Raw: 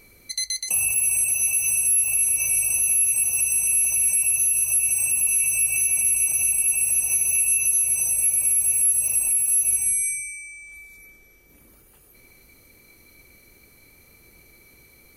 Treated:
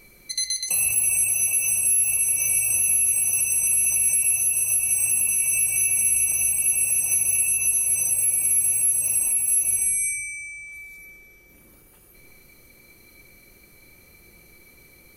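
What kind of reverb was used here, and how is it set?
rectangular room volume 1,800 cubic metres, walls mixed, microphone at 0.93 metres

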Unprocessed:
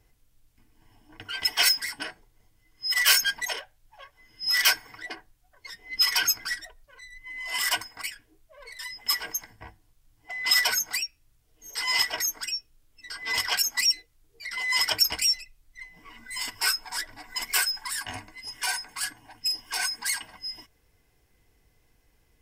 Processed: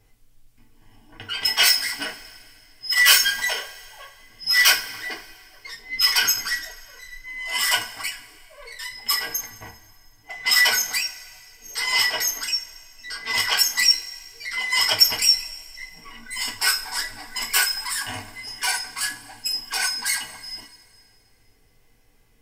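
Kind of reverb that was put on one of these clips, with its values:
coupled-rooms reverb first 0.28 s, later 2.3 s, from −20 dB, DRR 1 dB
level +2.5 dB

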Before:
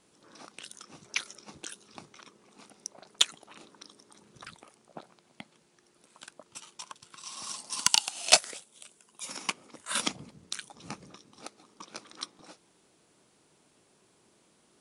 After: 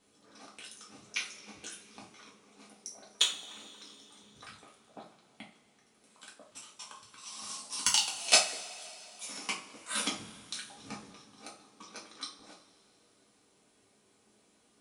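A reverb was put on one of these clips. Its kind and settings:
coupled-rooms reverb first 0.35 s, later 3.3 s, from −22 dB, DRR −4 dB
level −7.5 dB

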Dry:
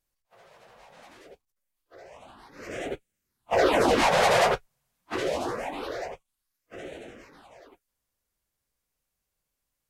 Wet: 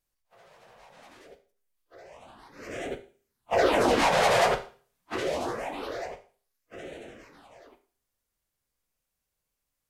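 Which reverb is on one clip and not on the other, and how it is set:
four-comb reverb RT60 0.41 s, combs from 25 ms, DRR 9.5 dB
level −1.5 dB

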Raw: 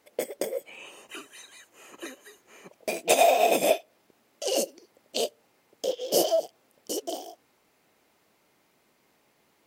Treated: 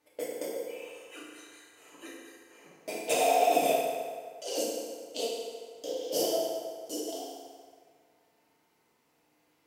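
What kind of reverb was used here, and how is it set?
feedback delay network reverb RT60 1.9 s, low-frequency decay 0.75×, high-frequency decay 0.7×, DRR −6 dB
level −11 dB

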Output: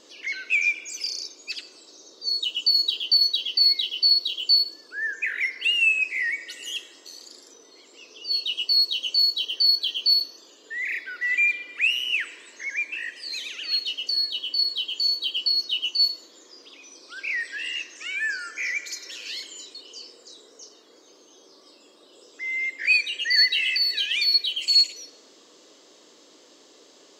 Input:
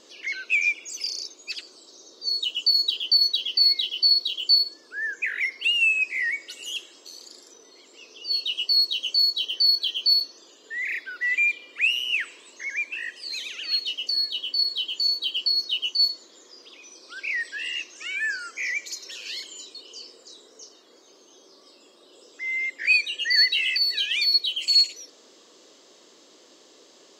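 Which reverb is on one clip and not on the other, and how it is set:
feedback delay network reverb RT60 2.3 s, high-frequency decay 0.35×, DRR 12 dB

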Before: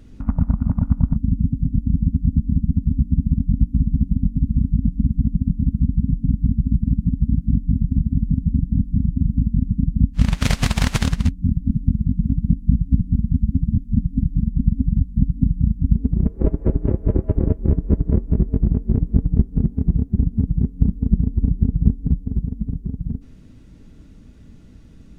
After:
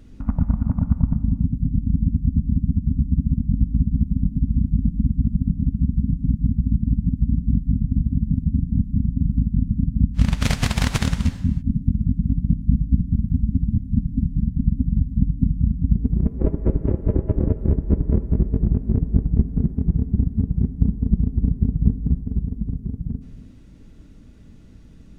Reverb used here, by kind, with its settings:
reverb whose tail is shaped and stops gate 350 ms flat, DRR 11 dB
level −1.5 dB

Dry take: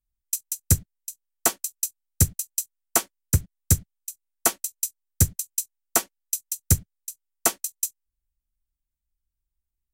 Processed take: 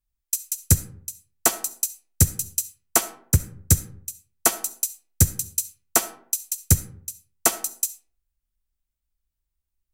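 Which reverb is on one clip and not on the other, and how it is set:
comb and all-pass reverb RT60 0.59 s, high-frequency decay 0.5×, pre-delay 25 ms, DRR 13.5 dB
level +2 dB

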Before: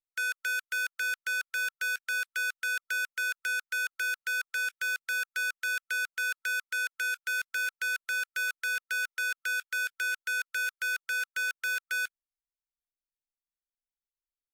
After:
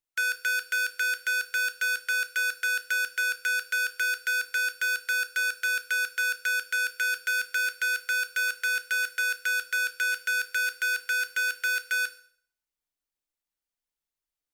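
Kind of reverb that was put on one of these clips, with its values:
feedback delay network reverb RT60 0.53 s, low-frequency decay 0.8×, high-frequency decay 1×, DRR 8 dB
level +4 dB

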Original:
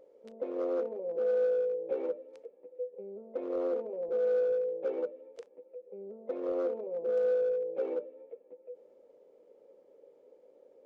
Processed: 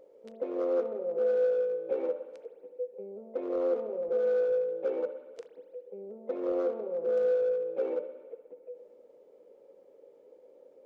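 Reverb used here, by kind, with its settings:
spring reverb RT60 1.4 s, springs 59 ms, chirp 25 ms, DRR 9.5 dB
level +2 dB

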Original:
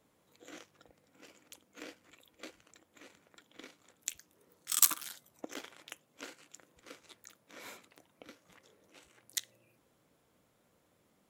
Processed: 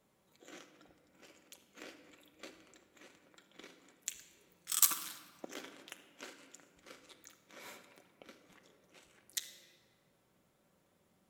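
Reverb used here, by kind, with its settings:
rectangular room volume 3,100 cubic metres, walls mixed, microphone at 1.1 metres
level −3 dB

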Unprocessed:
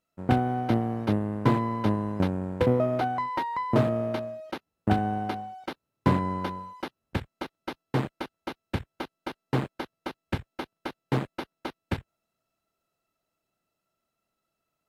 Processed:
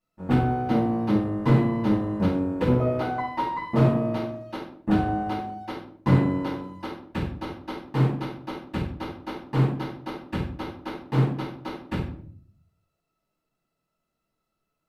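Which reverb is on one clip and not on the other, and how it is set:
rectangular room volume 660 cubic metres, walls furnished, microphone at 9.2 metres
level −10.5 dB

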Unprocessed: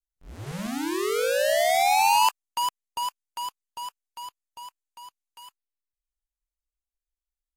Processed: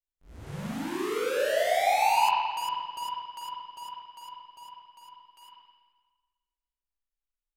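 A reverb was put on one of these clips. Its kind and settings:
spring reverb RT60 1.4 s, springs 41/55 ms, chirp 70 ms, DRR −4.5 dB
level −9 dB

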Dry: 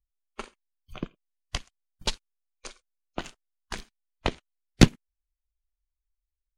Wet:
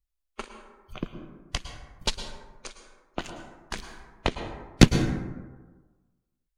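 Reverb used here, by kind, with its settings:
dense smooth reverb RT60 1.3 s, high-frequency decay 0.4×, pre-delay 95 ms, DRR 7 dB
level +1 dB

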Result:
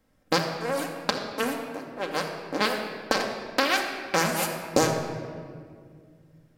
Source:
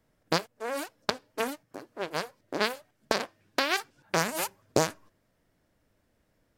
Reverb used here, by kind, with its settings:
rectangular room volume 3,800 cubic metres, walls mixed, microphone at 2.1 metres
level +1.5 dB

